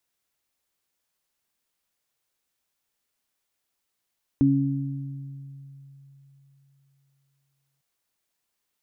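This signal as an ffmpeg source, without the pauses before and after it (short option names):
-f lavfi -i "aevalsrc='0.0891*pow(10,-3*t/3.65)*sin(2*PI*138*t)+0.178*pow(10,-3*t/1.55)*sin(2*PI*276*t)':d=3.4:s=44100"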